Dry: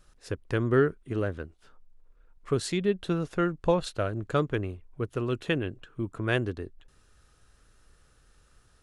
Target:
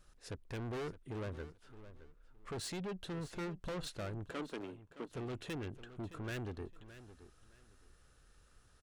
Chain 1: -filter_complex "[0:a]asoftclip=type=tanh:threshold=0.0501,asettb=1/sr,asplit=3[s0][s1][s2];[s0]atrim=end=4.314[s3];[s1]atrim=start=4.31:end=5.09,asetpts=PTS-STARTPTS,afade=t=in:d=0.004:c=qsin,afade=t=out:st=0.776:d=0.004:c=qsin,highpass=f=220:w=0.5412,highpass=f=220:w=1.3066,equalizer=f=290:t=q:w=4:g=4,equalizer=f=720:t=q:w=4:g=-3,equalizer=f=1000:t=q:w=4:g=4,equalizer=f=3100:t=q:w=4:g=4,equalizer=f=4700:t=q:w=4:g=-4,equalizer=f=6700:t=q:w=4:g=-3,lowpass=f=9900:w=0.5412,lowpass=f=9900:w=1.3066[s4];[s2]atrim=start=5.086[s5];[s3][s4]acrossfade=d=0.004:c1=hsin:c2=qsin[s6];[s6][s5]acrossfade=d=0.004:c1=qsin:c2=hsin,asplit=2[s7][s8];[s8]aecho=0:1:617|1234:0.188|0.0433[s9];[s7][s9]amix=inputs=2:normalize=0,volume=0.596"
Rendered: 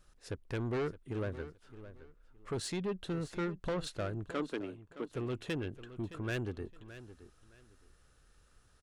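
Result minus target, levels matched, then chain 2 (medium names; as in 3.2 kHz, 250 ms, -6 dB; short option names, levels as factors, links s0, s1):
saturation: distortion -5 dB
-filter_complex "[0:a]asoftclip=type=tanh:threshold=0.02,asettb=1/sr,asplit=3[s0][s1][s2];[s0]atrim=end=4.314[s3];[s1]atrim=start=4.31:end=5.09,asetpts=PTS-STARTPTS,afade=t=in:d=0.004:c=qsin,afade=t=out:st=0.776:d=0.004:c=qsin,highpass=f=220:w=0.5412,highpass=f=220:w=1.3066,equalizer=f=290:t=q:w=4:g=4,equalizer=f=720:t=q:w=4:g=-3,equalizer=f=1000:t=q:w=4:g=4,equalizer=f=3100:t=q:w=4:g=4,equalizer=f=4700:t=q:w=4:g=-4,equalizer=f=6700:t=q:w=4:g=-3,lowpass=f=9900:w=0.5412,lowpass=f=9900:w=1.3066[s4];[s2]atrim=start=5.086[s5];[s3][s4]acrossfade=d=0.004:c1=hsin:c2=qsin[s6];[s6][s5]acrossfade=d=0.004:c1=qsin:c2=hsin,asplit=2[s7][s8];[s8]aecho=0:1:617|1234:0.188|0.0433[s9];[s7][s9]amix=inputs=2:normalize=0,volume=0.596"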